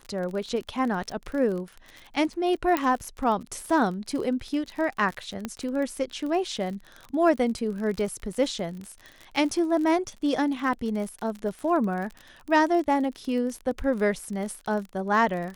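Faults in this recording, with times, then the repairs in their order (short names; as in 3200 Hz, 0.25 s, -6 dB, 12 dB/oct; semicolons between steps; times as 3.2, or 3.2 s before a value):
crackle 40/s -32 dBFS
2.77 pop -10 dBFS
5.45 pop -16 dBFS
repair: de-click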